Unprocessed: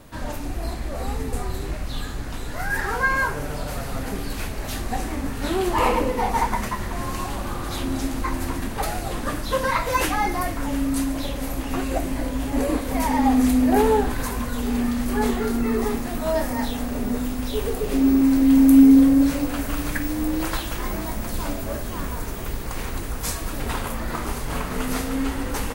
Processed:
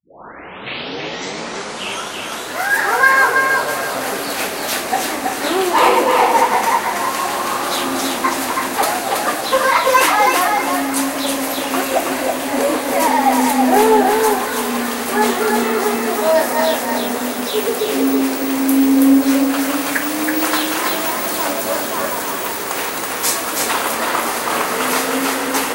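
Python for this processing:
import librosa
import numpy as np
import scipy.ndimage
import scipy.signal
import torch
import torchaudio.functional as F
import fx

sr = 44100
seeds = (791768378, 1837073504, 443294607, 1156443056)

p1 = fx.tape_start_head(x, sr, length_s=2.48)
p2 = scipy.signal.sosfilt(scipy.signal.butter(2, 440.0, 'highpass', fs=sr, output='sos'), p1)
p3 = fx.rider(p2, sr, range_db=4, speed_s=2.0)
p4 = p2 + (p3 * 10.0 ** (-1.0 / 20.0))
p5 = 10.0 ** (-6.5 / 20.0) * np.tanh(p4 / 10.0 ** (-6.5 / 20.0))
p6 = p5 + fx.echo_feedback(p5, sr, ms=326, feedback_pct=28, wet_db=-3.5, dry=0)
y = p6 * 10.0 ** (4.5 / 20.0)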